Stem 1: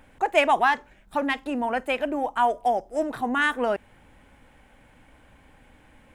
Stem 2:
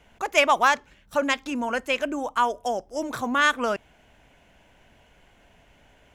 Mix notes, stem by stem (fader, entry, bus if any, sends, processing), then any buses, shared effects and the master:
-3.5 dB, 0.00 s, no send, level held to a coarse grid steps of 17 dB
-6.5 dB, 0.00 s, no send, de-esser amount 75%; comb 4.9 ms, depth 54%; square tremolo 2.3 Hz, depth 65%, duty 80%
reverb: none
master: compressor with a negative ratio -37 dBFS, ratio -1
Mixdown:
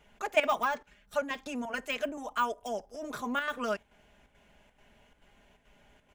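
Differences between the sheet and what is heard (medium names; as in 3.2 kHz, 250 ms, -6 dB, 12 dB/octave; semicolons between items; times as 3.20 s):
stem 2: polarity flipped; master: missing compressor with a negative ratio -37 dBFS, ratio -1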